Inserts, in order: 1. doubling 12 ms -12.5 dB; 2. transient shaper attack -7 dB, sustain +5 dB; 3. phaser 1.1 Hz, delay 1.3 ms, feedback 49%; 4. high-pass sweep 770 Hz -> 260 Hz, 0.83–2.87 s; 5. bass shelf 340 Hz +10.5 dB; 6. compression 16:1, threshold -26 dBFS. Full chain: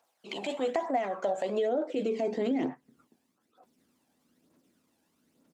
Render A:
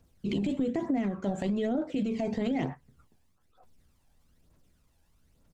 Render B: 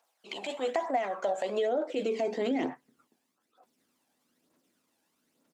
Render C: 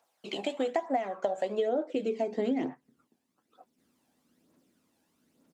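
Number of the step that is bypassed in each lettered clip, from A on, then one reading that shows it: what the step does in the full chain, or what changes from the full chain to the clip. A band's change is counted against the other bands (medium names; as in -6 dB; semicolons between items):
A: 4, 125 Hz band +15.0 dB; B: 5, 125 Hz band -5.0 dB; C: 2, crest factor change +2.0 dB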